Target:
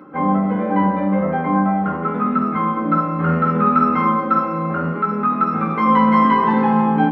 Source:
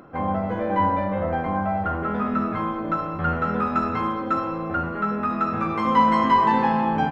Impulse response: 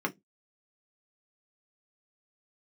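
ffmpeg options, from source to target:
-filter_complex "[0:a]asettb=1/sr,asplit=3[a][b][c];[a]atrim=end=2.724[d];[b]atrim=start=2.72:end=4.94,asetpts=PTS-STARTPTS,afade=t=in:d=0.004:c=qsin,afade=t=out:st=2.216:d=0.004:c=qsin,asplit=2[e][f];[f]adelay=49,volume=-5dB[g];[e][g]amix=inputs=2:normalize=0,atrim=end_sample=97902[h];[c]atrim=start=4.936[i];[d][h]acrossfade=d=0.004:c1=hsin:c2=qsin[j];[j][i]acrossfade=d=0.004:c1=qsin:c2=hsin[k];[1:a]atrim=start_sample=2205[l];[k][l]afir=irnorm=-1:irlink=0,volume=-4dB"

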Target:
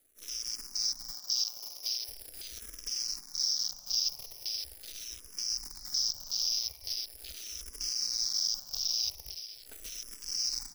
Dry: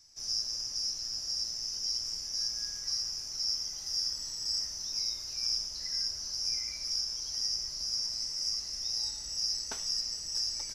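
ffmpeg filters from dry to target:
-filter_complex "[0:a]afwtdn=0.0178,acrusher=bits=9:dc=4:mix=0:aa=0.000001,asettb=1/sr,asplit=3[a][b][c];[a]atrim=end=1.104[d];[b]atrim=start=1.1:end=2.09,asetpts=PTS-STARTPTS,afade=t=in:d=0.004:c=qsin,afade=t=out:st=0.986:d=0.004:c=qsin,highpass=270[e];[c]atrim=start=2.086[f];[d][e]acrossfade=d=0.004:c1=hsin:c2=qsin[g];[g][f]acrossfade=d=0.004:c1=qsin:c2=hsin,asettb=1/sr,asplit=3[h][i][j];[h]atrim=end=9.184[k];[i]atrim=start=9.18:end=9.66,asetpts=PTS-STARTPTS,afade=t=in:d=0.004:c=qsin,afade=t=out:st=0.476:d=0.004:c=qsin,acompressor=threshold=-44dB:ratio=8[l];[j]atrim=start=9.656[m];[k][l]acrossfade=d=0.004:c1=hsin:c2=qsin[n];[n][m]acrossfade=d=0.004:c1=qsin:c2=hsin,highshelf=f=8.7k:g=9.5,alimiter=level_in=2dB:limit=-24dB:level=0:latency=1:release=63,volume=-2dB,asettb=1/sr,asplit=3[o][p][q];[o]atrim=end=6.734[r];[p]atrim=start=6.73:end=7.19,asetpts=PTS-STARTPTS,afade=t=in:d=0.004:c=qsin,afade=t=out:st=0.456:d=0.004:c=qsin,aeval=exprs='0.0501*(cos(1*acos(clip(val(0)/0.0501,-1,1)))-cos(1*PI/2))+0.00251*(cos(7*acos(clip(val(0)/0.0501,-1,1)))-cos(7*PI/2))':c=same[s];[q]atrim=start=7.186[t];[r][s]acrossfade=d=0.004:c1=hsin:c2=qsin[u];[u][t]acrossfade=d=0.004:c1=qsin:c2=hsin,asplit=2[v][w];[w]afreqshift=-0.41[x];[v][x]amix=inputs=2:normalize=1,volume=7.5dB"

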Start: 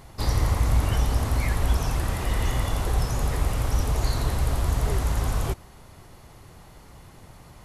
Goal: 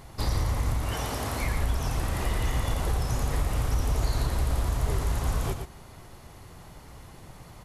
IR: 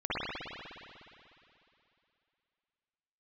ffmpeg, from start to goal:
-filter_complex "[0:a]asettb=1/sr,asplit=3[a][b][c];[a]atrim=end=0.834[d];[b]atrim=start=0.83:end=1.42,asetpts=PTS-STARTPTS,afade=t=in:d=0.004:c=qsin,afade=t=out:st=0.586:d=0.004:c=qsin,highpass=f=260:p=1[e];[c]atrim=start=1.416[f];[d][e]acrossfade=d=0.004:c1=hsin:c2=qsin[g];[g][f]acrossfade=d=0.004:c1=qsin:c2=hsin,acompressor=threshold=-24dB:ratio=3,aecho=1:1:117:0.447"

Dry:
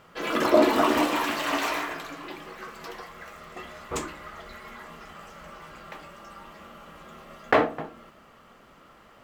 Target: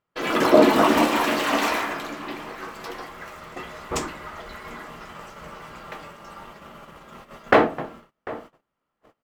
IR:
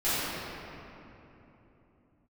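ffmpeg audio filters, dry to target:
-filter_complex "[0:a]asplit=2[a][b];[b]adelay=744,lowpass=f=1.6k:p=1,volume=-16dB,asplit=2[c][d];[d]adelay=744,lowpass=f=1.6k:p=1,volume=0.2[e];[a][c][e]amix=inputs=3:normalize=0,asplit=2[f][g];[g]asetrate=33038,aresample=44100,atempo=1.33484,volume=-7dB[h];[f][h]amix=inputs=2:normalize=0,agate=range=-32dB:threshold=-45dB:ratio=16:detection=peak,volume=3.5dB"

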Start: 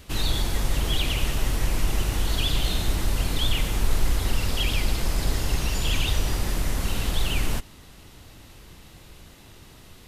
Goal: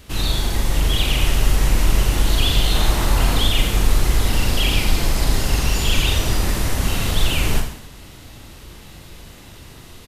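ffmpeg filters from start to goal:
-filter_complex "[0:a]asettb=1/sr,asplit=3[a][b][c];[a]atrim=end=2.744[d];[b]atrim=start=2.74:end=3.39,asetpts=PTS-STARTPTS,afade=t=in:d=0.004:c=qsin,afade=t=out:st=0.646:d=0.004:c=qsin,equalizer=f=1k:w=0.88:g=6.5[e];[c]atrim=start=3.386[f];[d][e]acrossfade=d=0.004:c1=hsin:c2=qsin[g];[g][f]acrossfade=d=0.004:c1=qsin:c2=hsin,aecho=1:1:40|86|138.9|199.7|269.7:0.631|0.398|0.251|0.158|0.1,dynaudnorm=f=640:g=3:m=3dB,volume=2dB"

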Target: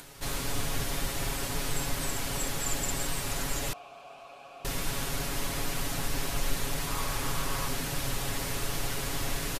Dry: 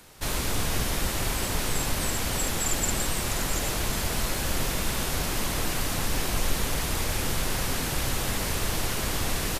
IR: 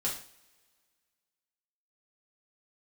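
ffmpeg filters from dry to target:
-filter_complex "[0:a]aecho=1:1:7.2:0.65,acompressor=mode=upward:threshold=-35dB:ratio=2.5,asettb=1/sr,asplit=3[a][b][c];[a]atrim=end=3.734[d];[b]atrim=start=3.73:end=4.65,asetpts=PTS-STARTPTS,afade=t=in:d=0.004:c=qsin,afade=t=out:st=0.916:d=0.004:c=qsin,asplit=3[e][f][g];[e]bandpass=f=730:t=q:w=8,volume=0dB[h];[f]bandpass=f=1.09k:t=q:w=8,volume=-6dB[i];[g]bandpass=f=2.44k:t=q:w=8,volume=-9dB[j];[h][i][j]amix=inputs=3:normalize=0[k];[c]atrim=start=4.646[l];[d][k]acrossfade=d=0.004:c1=hsin:c2=qsin[m];[m][l]acrossfade=d=0.004:c1=qsin:c2=hsin,asettb=1/sr,asplit=3[n][o][p];[n]atrim=end=6.874[q];[o]atrim=start=6.87:end=7.69,asetpts=PTS-STARTPTS,afade=t=in:d=0.004:c=qsin,afade=t=out:st=0.816:d=0.004:c=qsin,equalizer=f=1.1k:t=o:w=0.51:g=8[r];[p]atrim=start=7.686[s];[q][r]acrossfade=d=0.004:c1=hsin:c2=qsin[t];[t][s]acrossfade=d=0.004:c1=qsin:c2=hsin,volume=-6dB"

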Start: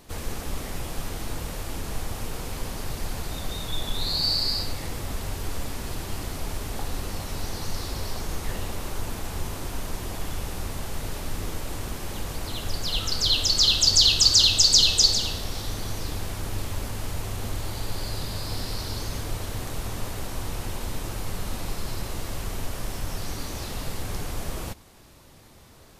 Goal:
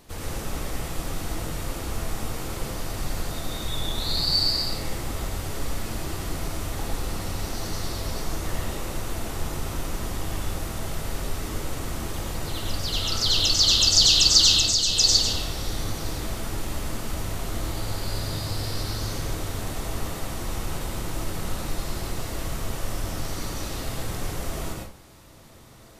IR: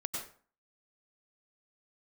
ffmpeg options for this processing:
-filter_complex "[0:a]asettb=1/sr,asplit=3[a][b][c];[a]atrim=end=14.554[d];[b]atrim=start=14.55:end=14.96,asetpts=PTS-STARTPTS,afade=t=in:d=0.004:c=qsin,afade=t=out:st=0.406:d=0.004:c=qsin,acompressor=threshold=-20dB:ratio=6[e];[c]atrim=start=14.956[f];[d][e]acrossfade=d=0.004:c1=hsin:c2=qsin[g];[g][f]acrossfade=d=0.004:c1=qsin:c2=hsin[h];[1:a]atrim=start_sample=2205[i];[h][i]afir=irnorm=-1:irlink=0"

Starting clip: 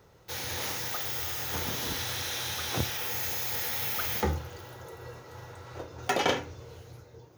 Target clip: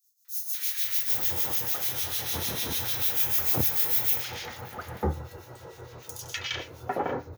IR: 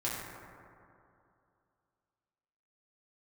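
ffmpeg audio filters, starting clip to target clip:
-filter_complex "[0:a]acrossover=split=1600|5800[a][b][c];[b]adelay=250[d];[a]adelay=800[e];[e][d][c]amix=inputs=3:normalize=0,crystalizer=i=1:c=0,acrossover=split=1800[f][g];[f]aeval=exprs='val(0)*(1-0.7/2+0.7/2*cos(2*PI*6.7*n/s))':c=same[h];[g]aeval=exprs='val(0)*(1-0.7/2-0.7/2*cos(2*PI*6.7*n/s))':c=same[i];[h][i]amix=inputs=2:normalize=0,volume=3dB"

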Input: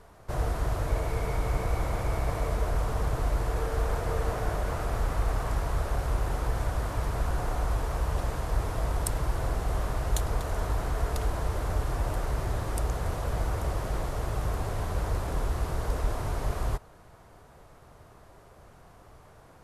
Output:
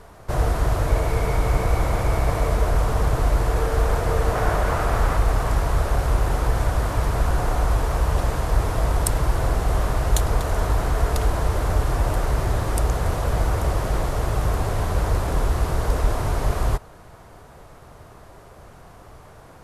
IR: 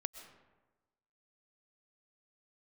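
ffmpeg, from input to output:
-filter_complex "[0:a]asettb=1/sr,asplit=3[a][b][c];[a]atrim=end=4.354[d];[b]atrim=start=4.35:end=5.17,asetpts=PTS-STARTPTS,afade=t=in:d=0.004:c=qsin,afade=t=out:st=0.816:d=0.004:c=qsin,equalizer=f=1.3k:t=o:w=2:g=4[e];[c]atrim=start=5.166[f];[d][e]acrossfade=d=0.004:c1=hsin:c2=qsin[g];[g][f]acrossfade=d=0.004:c1=qsin:c2=hsin,volume=8dB"

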